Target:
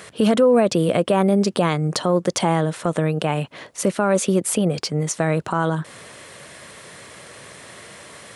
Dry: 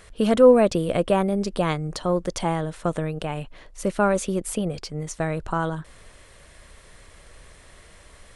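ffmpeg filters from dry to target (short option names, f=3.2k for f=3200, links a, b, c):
-filter_complex "[0:a]highpass=f=120:w=0.5412,highpass=f=120:w=1.3066,asplit=2[a][b];[b]acompressor=threshold=-31dB:ratio=6,volume=0.5dB[c];[a][c]amix=inputs=2:normalize=0,alimiter=limit=-12.5dB:level=0:latency=1:release=71,volume=4.5dB"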